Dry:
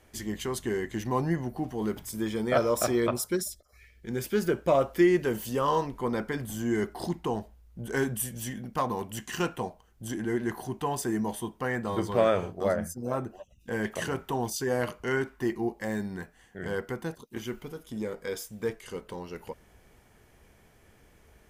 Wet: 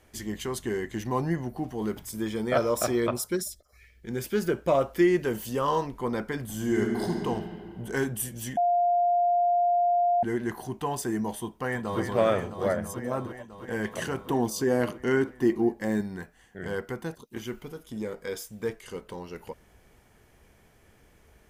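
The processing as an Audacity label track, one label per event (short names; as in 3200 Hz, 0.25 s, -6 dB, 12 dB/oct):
6.490000	7.250000	reverb throw, RT60 2.6 s, DRR 0.5 dB
8.570000	10.230000	bleep 702 Hz -20 dBFS
11.390000	12.000000	echo throw 0.33 s, feedback 80%, level -7 dB
14.250000	16.010000	bell 280 Hz +7.5 dB 1.3 oct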